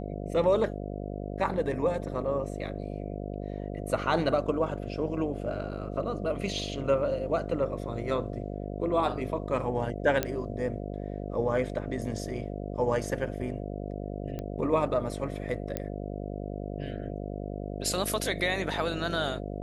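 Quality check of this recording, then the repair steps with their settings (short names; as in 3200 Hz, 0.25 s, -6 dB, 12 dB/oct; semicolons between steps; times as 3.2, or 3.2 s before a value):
buzz 50 Hz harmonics 14 -36 dBFS
10.23 pop -11 dBFS
14.39 pop -23 dBFS
15.77 pop -16 dBFS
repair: de-click; de-hum 50 Hz, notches 14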